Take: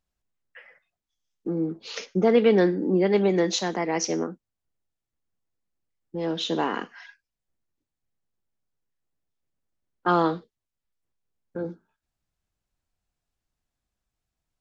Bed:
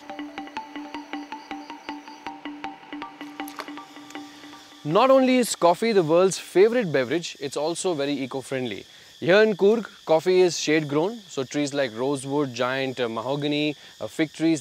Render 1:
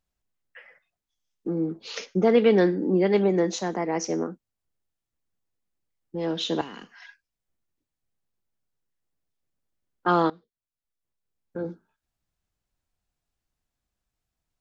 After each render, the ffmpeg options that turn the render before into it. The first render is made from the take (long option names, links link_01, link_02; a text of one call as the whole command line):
ffmpeg -i in.wav -filter_complex "[0:a]asettb=1/sr,asplit=3[link_01][link_02][link_03];[link_01]atrim=end=3.244[link_04];[link_02]atrim=start=3.24:end=4.26,asetpts=PTS-STARTPTS,afade=type=in:duration=0.004:curve=qsin,afade=type=out:start_time=1.016:duration=0.004:curve=qsin,equalizer=frequency=3500:width=0.82:gain=-9[link_05];[link_03]atrim=start=4.256[link_06];[link_04][link_05]acrossfade=duration=0.004:curve1=hsin:curve2=qsin[link_07];[link_07][link_06]acrossfade=duration=0.004:curve1=qsin:curve2=hsin,asettb=1/sr,asplit=3[link_08][link_09][link_10];[link_08]atrim=end=6.614[link_11];[link_09]atrim=start=6.61:end=7.02,asetpts=PTS-STARTPTS,afade=type=in:duration=0.004:curve=qsin,afade=type=out:start_time=0.406:duration=0.004:curve=qsin,acrossover=split=170|3000[link_12][link_13][link_14];[link_13]acompressor=threshold=-52dB:ratio=2:attack=3.2:release=140:knee=2.83:detection=peak[link_15];[link_12][link_15][link_14]amix=inputs=3:normalize=0[link_16];[link_10]atrim=start=7.016[link_17];[link_11][link_16]acrossfade=duration=0.004:curve1=hsin:curve2=qsin[link_18];[link_18][link_17]acrossfade=duration=0.004:curve1=qsin:curve2=hsin,asplit=2[link_19][link_20];[link_19]atrim=end=10.3,asetpts=PTS-STARTPTS,afade=type=out:start_time=10.296:duration=0.004:curve=hsin:silence=0.105925[link_21];[link_20]atrim=start=10.3,asetpts=PTS-STARTPTS,afade=type=in:duration=1.37:silence=0.105925[link_22];[link_21][link_22]concat=n=2:v=0:a=1" out.wav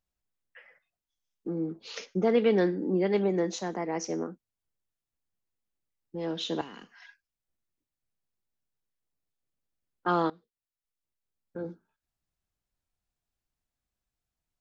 ffmpeg -i in.wav -af "volume=-5dB" out.wav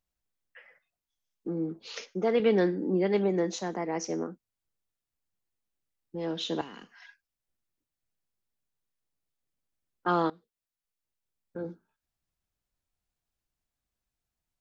ffmpeg -i in.wav -filter_complex "[0:a]asettb=1/sr,asplit=3[link_01][link_02][link_03];[link_01]atrim=end=1.884[link_04];[link_02]atrim=start=1.88:end=2.4,asetpts=PTS-STARTPTS,afade=type=in:duration=0.004:curve=qsin,afade=type=out:start_time=0.516:duration=0.004:curve=qsin,equalizer=frequency=78:width=0.63:gain=-14.5[link_05];[link_03]atrim=start=2.396[link_06];[link_04][link_05]acrossfade=duration=0.004:curve1=hsin:curve2=qsin[link_07];[link_07][link_06]acrossfade=duration=0.004:curve1=qsin:curve2=hsin" out.wav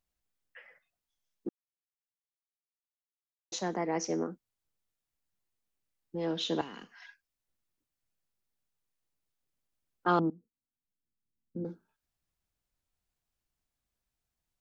ffmpeg -i in.wav -filter_complex "[0:a]asettb=1/sr,asplit=3[link_01][link_02][link_03];[link_01]atrim=end=10.194[link_04];[link_02]atrim=start=10.19:end=11.65,asetpts=PTS-STARTPTS,afade=type=in:duration=0.004:curve=qsin,afade=type=out:start_time=1.456:duration=0.004:curve=qsin,lowpass=frequency=250:width_type=q:width=2.2[link_05];[link_03]atrim=start=11.646[link_06];[link_04][link_05]acrossfade=duration=0.004:curve1=hsin:curve2=qsin[link_07];[link_07][link_06]acrossfade=duration=0.004:curve1=qsin:curve2=hsin,asplit=3[link_08][link_09][link_10];[link_08]atrim=end=1.49,asetpts=PTS-STARTPTS,afade=type=out:start_time=1.486:duration=0.004:curve=hsin[link_11];[link_09]atrim=start=1.49:end=3.52,asetpts=PTS-STARTPTS,volume=0[link_12];[link_10]atrim=start=3.52,asetpts=PTS-STARTPTS,afade=type=in:duration=0.004:curve=hsin[link_13];[link_11][link_12][link_13]concat=n=3:v=0:a=1" out.wav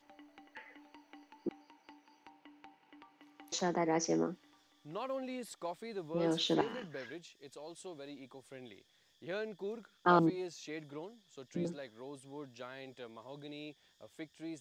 ffmpeg -i in.wav -i bed.wav -filter_complex "[1:a]volume=-23dB[link_01];[0:a][link_01]amix=inputs=2:normalize=0" out.wav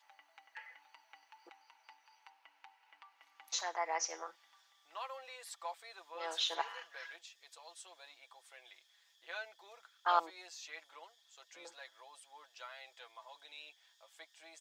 ffmpeg -i in.wav -af "highpass=frequency=780:width=0.5412,highpass=frequency=780:width=1.3066,aecho=1:1:6:0.58" out.wav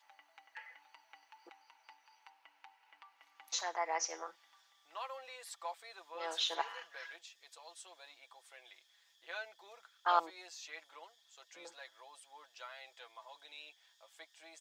ffmpeg -i in.wav -af "lowshelf=frequency=240:gain=5.5" out.wav